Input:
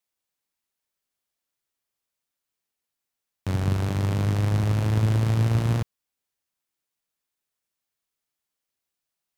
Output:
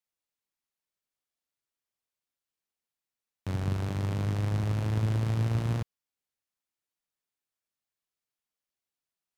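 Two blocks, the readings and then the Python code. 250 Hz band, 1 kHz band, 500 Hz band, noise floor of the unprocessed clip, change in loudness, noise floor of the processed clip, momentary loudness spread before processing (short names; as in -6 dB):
-6.0 dB, -6.0 dB, -6.0 dB, -85 dBFS, -6.0 dB, under -85 dBFS, 7 LU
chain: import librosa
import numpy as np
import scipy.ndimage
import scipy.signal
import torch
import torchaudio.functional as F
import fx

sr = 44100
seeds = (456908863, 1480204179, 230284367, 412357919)

y = fx.high_shelf(x, sr, hz=8800.0, db=-4.0)
y = F.gain(torch.from_numpy(y), -6.0).numpy()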